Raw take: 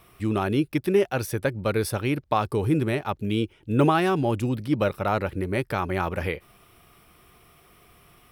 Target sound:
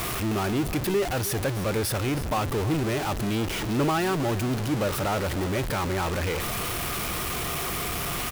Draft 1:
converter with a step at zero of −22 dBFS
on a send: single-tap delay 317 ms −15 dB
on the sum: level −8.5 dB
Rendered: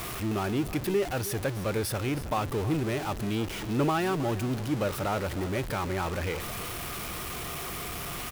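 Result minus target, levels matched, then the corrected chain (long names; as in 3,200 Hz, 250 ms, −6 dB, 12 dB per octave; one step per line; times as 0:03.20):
converter with a step at zero: distortion −4 dB
converter with a step at zero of −15.5 dBFS
on a send: single-tap delay 317 ms −15 dB
on the sum: level −8.5 dB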